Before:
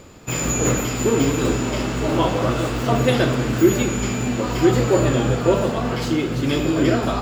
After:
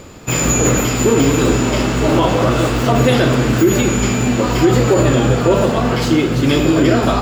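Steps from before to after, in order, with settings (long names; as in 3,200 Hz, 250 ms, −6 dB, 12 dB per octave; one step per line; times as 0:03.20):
brickwall limiter −10.5 dBFS, peak gain reduction 7 dB
level +7 dB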